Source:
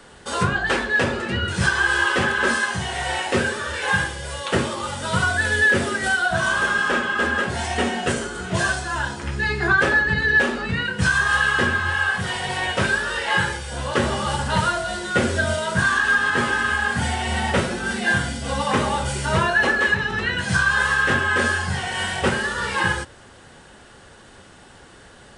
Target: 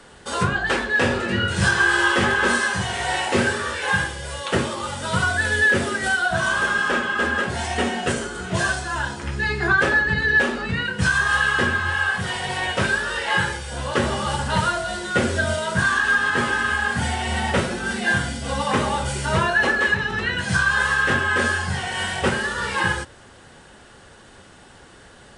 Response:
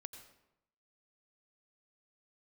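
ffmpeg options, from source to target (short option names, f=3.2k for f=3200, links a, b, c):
-filter_complex "[0:a]asettb=1/sr,asplit=3[a][b][c];[a]atrim=end=0.974[d];[b]atrim=start=0.97:end=3.74,asetpts=PTS-STARTPTS,afade=t=in:d=0.004:c=qsin,afade=t=out:st=2.766:d=0.004:c=qsin,aecho=1:1:20|46|79.8|123.7|180.9:0.631|0.398|0.251|0.158|0.1,atrim=end_sample=122157[e];[c]atrim=start=3.736[f];[d][e]acrossfade=d=0.004:c1=hsin:c2=qsin[g];[g][f]acrossfade=d=0.004:c1=qsin:c2=hsin" -ar 44100 -c:a libmp3lame -b:a 96k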